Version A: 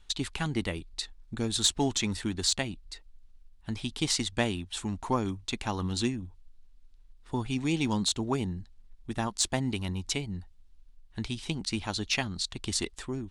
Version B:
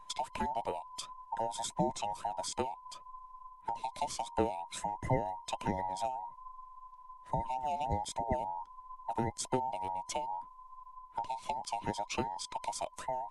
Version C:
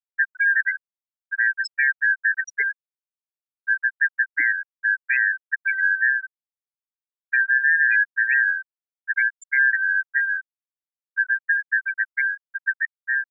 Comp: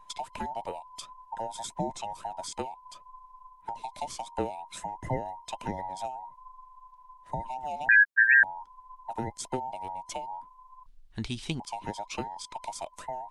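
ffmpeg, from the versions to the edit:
-filter_complex "[1:a]asplit=3[a][b][c];[a]atrim=end=7.892[d];[2:a]atrim=start=7.888:end=8.432[e];[b]atrim=start=8.428:end=10.862[f];[0:a]atrim=start=10.858:end=11.602[g];[c]atrim=start=11.598[h];[d][e]acrossfade=d=0.004:c1=hsin:c2=hsin[i];[i][f]acrossfade=d=0.004:c1=hsin:c2=hsin[j];[j][g]acrossfade=d=0.004:c1=hsin:c2=hsin[k];[k][h]acrossfade=d=0.004:c1=hsin:c2=hsin"

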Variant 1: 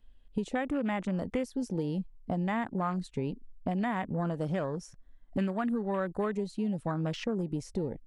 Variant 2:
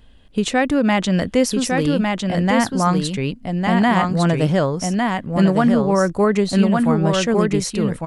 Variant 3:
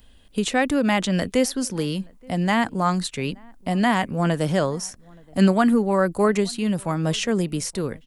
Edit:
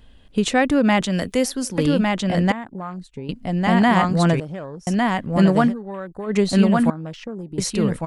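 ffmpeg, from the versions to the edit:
-filter_complex "[0:a]asplit=4[a][b][c][d];[1:a]asplit=6[e][f][g][h][i][j];[e]atrim=end=1.012[k];[2:a]atrim=start=1.008:end=1.782[l];[f]atrim=start=1.778:end=2.522[m];[a]atrim=start=2.518:end=3.292[n];[g]atrim=start=3.288:end=4.402[o];[b]atrim=start=4.398:end=4.872[p];[h]atrim=start=4.868:end=5.74[q];[c]atrim=start=5.64:end=6.36[r];[i]atrim=start=6.26:end=6.902[s];[d]atrim=start=6.898:end=7.582[t];[j]atrim=start=7.578[u];[k][l]acrossfade=d=0.004:c1=hsin:c2=hsin[v];[v][m]acrossfade=d=0.004:c1=hsin:c2=hsin[w];[w][n]acrossfade=d=0.004:c1=hsin:c2=hsin[x];[x][o]acrossfade=d=0.004:c1=hsin:c2=hsin[y];[y][p]acrossfade=d=0.004:c1=hsin:c2=hsin[z];[z][q]acrossfade=d=0.004:c1=hsin:c2=hsin[aa];[aa][r]acrossfade=d=0.1:c1=tri:c2=tri[ab];[ab][s]acrossfade=d=0.1:c1=tri:c2=tri[ac];[ac][t]acrossfade=d=0.004:c1=hsin:c2=hsin[ad];[ad][u]acrossfade=d=0.004:c1=hsin:c2=hsin"

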